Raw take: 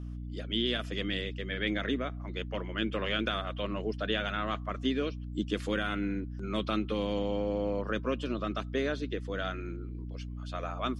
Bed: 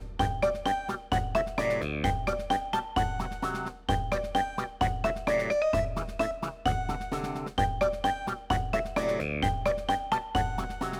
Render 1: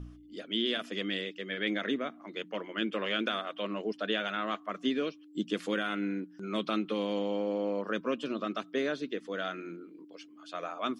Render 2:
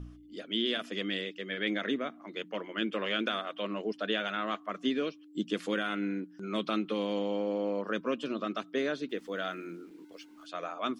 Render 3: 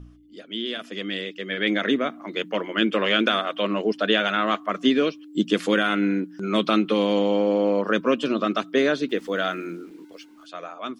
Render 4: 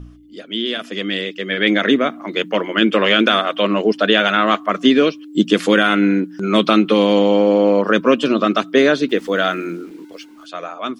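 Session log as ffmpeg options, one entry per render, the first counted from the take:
-af "bandreject=f=60:t=h:w=4,bandreject=f=120:t=h:w=4,bandreject=f=180:t=h:w=4,bandreject=f=240:t=h:w=4"
-filter_complex "[0:a]asettb=1/sr,asplit=3[a][b][c];[a]atrim=end=9.094[d];[b]atrim=start=9.09:end=10.46,asetpts=PTS-STARTPTS,afade=t=in:d=0.004:c=qsin,afade=t=out:st=1.366:d=0.004:c=qsin,aeval=exprs='val(0)*gte(abs(val(0)),0.00112)':c=same[e];[c]atrim=start=10.456[f];[d][e]acrossfade=d=0.004:c1=hsin:c2=qsin[g];[g][f]acrossfade=d=0.004:c1=qsin:c2=hsin"
-af "dynaudnorm=f=260:g=11:m=11dB"
-af "volume=7.5dB,alimiter=limit=-1dB:level=0:latency=1"

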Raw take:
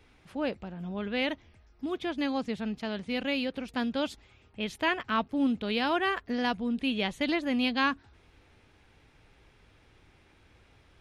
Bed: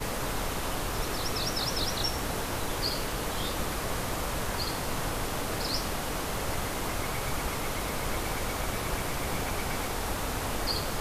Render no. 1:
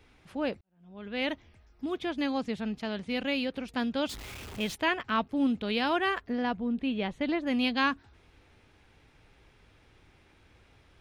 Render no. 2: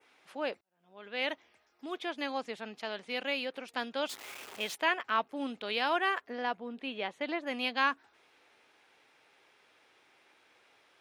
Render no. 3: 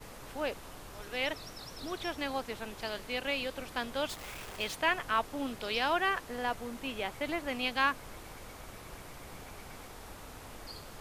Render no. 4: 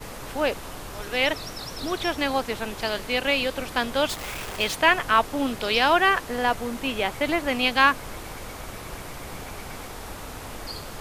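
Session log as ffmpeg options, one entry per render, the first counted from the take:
-filter_complex "[0:a]asettb=1/sr,asplit=3[a][b][c];[a]atrim=end=4.094[d];[b]atrim=start=4.09:end=4.75,asetpts=PTS-STARTPTS,afade=t=in:d=0.004:c=qsin,afade=t=out:st=0.656:d=0.004:c=qsin,aeval=exprs='val(0)+0.5*0.0126*sgn(val(0))':c=same[e];[c]atrim=start=4.746[f];[d][e]acrossfade=d=0.004:c1=hsin:c2=qsin[g];[g][f]acrossfade=d=0.004:c1=qsin:c2=hsin,asplit=3[h][i][j];[h]afade=t=out:st=6.28:d=0.02[k];[i]lowpass=f=1.5k:p=1,afade=t=in:st=6.28:d=0.02,afade=t=out:st=7.46:d=0.02[l];[j]afade=t=in:st=7.46:d=0.02[m];[k][l][m]amix=inputs=3:normalize=0,asplit=2[n][o];[n]atrim=end=0.61,asetpts=PTS-STARTPTS,afade=t=out:st=0.606:d=0.004:c=hsin[p];[o]atrim=start=0.61,asetpts=PTS-STARTPTS,afade=t=in:d=0.67:c=qua[q];[p][q]concat=n=2:v=0:a=1"
-af "highpass=500,adynamicequalizer=threshold=0.00355:dfrequency=4100:dqfactor=1.2:tfrequency=4100:tqfactor=1.2:attack=5:release=100:ratio=0.375:range=2.5:mode=cutabove:tftype=bell"
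-filter_complex "[1:a]volume=-16dB[a];[0:a][a]amix=inputs=2:normalize=0"
-af "volume=10.5dB"

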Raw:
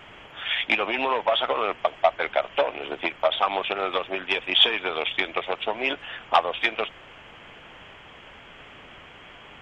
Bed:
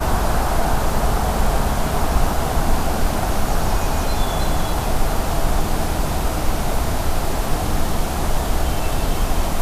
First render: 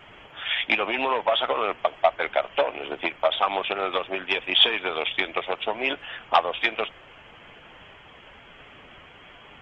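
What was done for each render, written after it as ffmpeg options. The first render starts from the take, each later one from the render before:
-af "afftdn=nr=6:nf=-47"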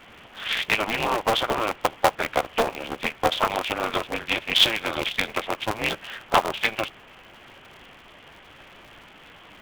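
-af "aeval=exprs='val(0)*sgn(sin(2*PI*110*n/s))':c=same"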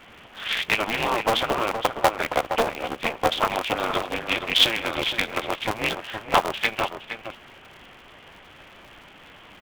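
-filter_complex "[0:a]asplit=2[a][b];[b]adelay=466.5,volume=-8dB,highshelf=f=4k:g=-10.5[c];[a][c]amix=inputs=2:normalize=0"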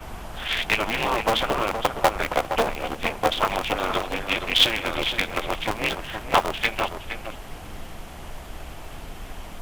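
-filter_complex "[1:a]volume=-18.5dB[a];[0:a][a]amix=inputs=2:normalize=0"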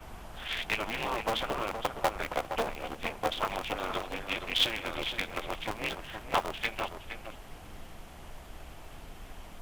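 -af "volume=-9dB"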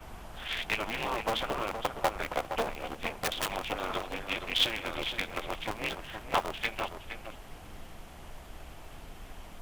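-filter_complex "[0:a]asettb=1/sr,asplit=3[a][b][c];[a]atrim=end=3.114[d];[b]atrim=start=3.11:end=3.54,asetpts=PTS-STARTPTS,afade=t=in:d=0.004:c=qsin,afade=t=out:st=0.426:d=0.004:c=qsin,aeval=exprs='(mod(15*val(0)+1,2)-1)/15':c=same[e];[c]atrim=start=3.536[f];[d][e]acrossfade=d=0.004:c1=hsin:c2=qsin[g];[g][f]acrossfade=d=0.004:c1=qsin:c2=hsin"

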